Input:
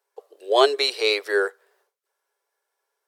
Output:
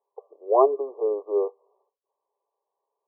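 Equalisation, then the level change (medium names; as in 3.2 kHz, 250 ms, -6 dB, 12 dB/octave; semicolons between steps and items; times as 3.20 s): high-pass 280 Hz; brick-wall FIR low-pass 1.2 kHz; 0.0 dB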